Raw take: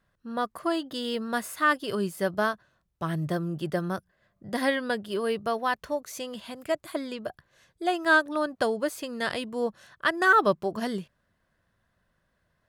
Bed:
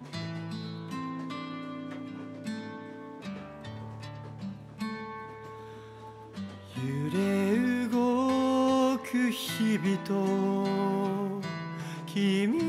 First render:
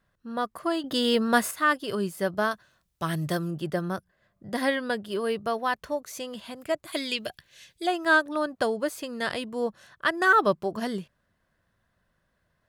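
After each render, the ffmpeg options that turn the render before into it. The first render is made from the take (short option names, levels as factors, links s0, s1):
-filter_complex "[0:a]asettb=1/sr,asplit=3[s0][s1][s2];[s0]atrim=end=2.514[s3];[s1]atrim=start=2.51:end=3.51,asetpts=PTS-STARTPTS,afade=t=in:d=0.004:c=qsin,afade=t=out:st=0.996:d=0.004:c=qsin,highshelf=f=2100:g=10[s4];[s2]atrim=start=3.506[s5];[s3][s4]acrossfade=d=0.004:c1=hsin:c2=qsin[s6];[s6][s5]acrossfade=d=0.004:c1=qsin:c2=hsin,asplit=3[s7][s8][s9];[s7]afade=t=out:st=6.92:d=0.02[s10];[s8]highshelf=f=1800:t=q:w=1.5:g=11.5,afade=t=in:st=6.92:d=0.02,afade=t=out:st=7.85:d=0.02[s11];[s9]afade=t=in:st=7.85:d=0.02[s12];[s10][s11][s12]amix=inputs=3:normalize=0,asplit=3[s13][s14][s15];[s13]atrim=end=0.842[s16];[s14]atrim=start=0.838:end=1.512,asetpts=PTS-STARTPTS,volume=2.37[s17];[s15]atrim=start=1.508[s18];[s16][s17]acrossfade=d=0.004:c1=hsin:c2=hsin[s19];[s19][s18]acrossfade=d=0.004:c1=hsin:c2=hsin"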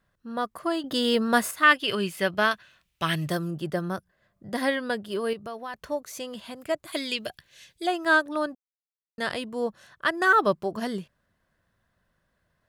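-filter_complex "[0:a]asettb=1/sr,asplit=3[s0][s1][s2];[s0]atrim=end=1.634[s3];[s1]atrim=start=1.63:end=3.29,asetpts=PTS-STARTPTS,afade=t=in:d=0.004:c=qsin,afade=t=out:st=1.656:d=0.004:c=qsin,equalizer=f=2600:t=o:w=1.2:g=14[s4];[s2]atrim=start=3.286[s5];[s3][s4]acrossfade=d=0.004:c1=hsin:c2=qsin[s6];[s6][s5]acrossfade=d=0.004:c1=qsin:c2=hsin,asettb=1/sr,asplit=3[s7][s8][s9];[s7]atrim=end=5.334[s10];[s8]atrim=start=5.33:end=5.74,asetpts=PTS-STARTPTS,afade=t=in:d=0.004:c=qsin,afade=t=out:st=0.406:d=0.004:c=qsin,acompressor=threshold=0.0112:ratio=2:attack=3.2:release=140:knee=1:detection=peak[s11];[s9]atrim=start=5.736[s12];[s10][s11]acrossfade=d=0.004:c1=hsin:c2=qsin[s13];[s13][s12]acrossfade=d=0.004:c1=qsin:c2=hsin,asplit=3[s14][s15][s16];[s14]atrim=end=8.55,asetpts=PTS-STARTPTS,afade=t=out:st=8.546:d=0.004:c=hsin[s17];[s15]atrim=start=8.55:end=9.18,asetpts=PTS-STARTPTS,volume=0[s18];[s16]atrim=start=9.18,asetpts=PTS-STARTPTS,afade=t=in:d=0.004:c=hsin[s19];[s17][s18][s19]concat=n=3:v=0:a=1"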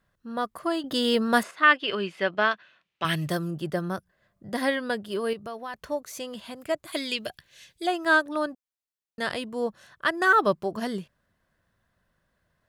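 -filter_complex "[0:a]asettb=1/sr,asplit=3[s0][s1][s2];[s0]atrim=end=1.434[s3];[s1]atrim=start=1.43:end=3.05,asetpts=PTS-STARTPTS,afade=t=in:d=0.004:c=qsin,afade=t=out:st=1.616:d=0.004:c=qsin,highpass=230,lowpass=3500[s4];[s2]atrim=start=3.046[s5];[s3][s4]acrossfade=d=0.004:c1=hsin:c2=qsin[s6];[s6][s5]acrossfade=d=0.004:c1=qsin:c2=hsin"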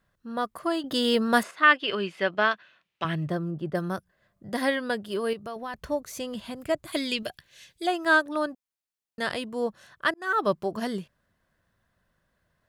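-filter_complex "[0:a]asettb=1/sr,asplit=3[s0][s1][s2];[s0]atrim=end=3.044[s3];[s1]atrim=start=3.04:end=3.75,asetpts=PTS-STARTPTS,afade=t=in:d=0.004:c=qsin,afade=t=out:st=0.706:d=0.004:c=qsin,lowpass=f=1000:p=1[s4];[s2]atrim=start=3.746[s5];[s3][s4]acrossfade=d=0.004:c1=hsin:c2=qsin[s6];[s6][s5]acrossfade=d=0.004:c1=qsin:c2=hsin,asettb=1/sr,asplit=3[s7][s8][s9];[s7]atrim=end=5.564[s10];[s8]atrim=start=5.56:end=7.23,asetpts=PTS-STARTPTS,afade=t=in:d=0.004:c=qsin,afade=t=out:st=1.666:d=0.004:c=qsin,lowshelf=f=190:g=11.5[s11];[s9]atrim=start=7.226[s12];[s10][s11]acrossfade=d=0.004:c1=hsin:c2=qsin[s13];[s13][s12]acrossfade=d=0.004:c1=qsin:c2=hsin,asplit=2[s14][s15];[s14]atrim=end=10.14,asetpts=PTS-STARTPTS,afade=t=out:st=10.136:d=0.004:c=hsin[s16];[s15]atrim=start=10.14,asetpts=PTS-STARTPTS,afade=t=in:d=0.41[s17];[s16][s17]concat=n=2:v=0:a=1"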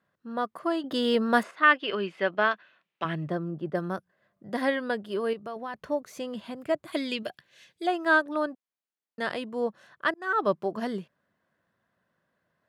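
-af "highpass=170,highshelf=f=4100:g=-11.5"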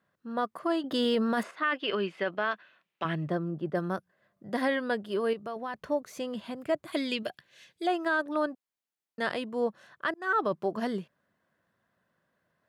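-af "alimiter=limit=0.119:level=0:latency=1:release=19"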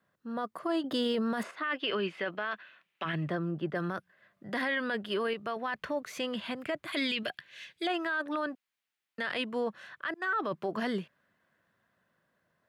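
-filter_complex "[0:a]acrossover=split=360|1500|3300[s0][s1][s2][s3];[s2]dynaudnorm=f=770:g=7:m=3.98[s4];[s0][s1][s4][s3]amix=inputs=4:normalize=0,alimiter=limit=0.0668:level=0:latency=1:release=18"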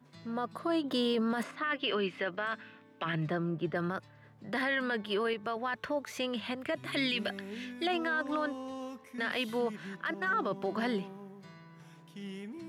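-filter_complex "[1:a]volume=0.15[s0];[0:a][s0]amix=inputs=2:normalize=0"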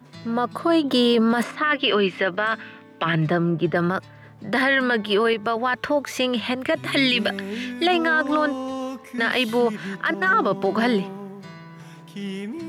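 -af "volume=3.98"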